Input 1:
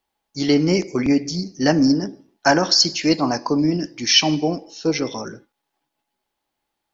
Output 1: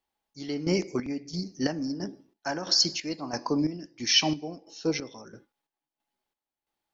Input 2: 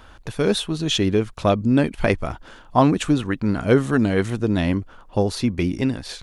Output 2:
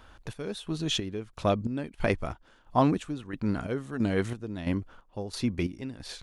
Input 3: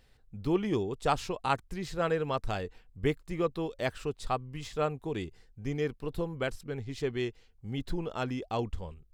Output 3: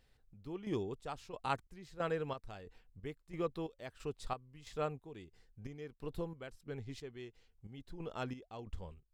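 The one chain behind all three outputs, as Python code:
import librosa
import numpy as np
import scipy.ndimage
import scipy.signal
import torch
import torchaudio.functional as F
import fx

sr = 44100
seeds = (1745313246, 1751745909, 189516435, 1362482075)

y = fx.chopper(x, sr, hz=1.5, depth_pct=65, duty_pct=50)
y = y * 10.0 ** (-7.0 / 20.0)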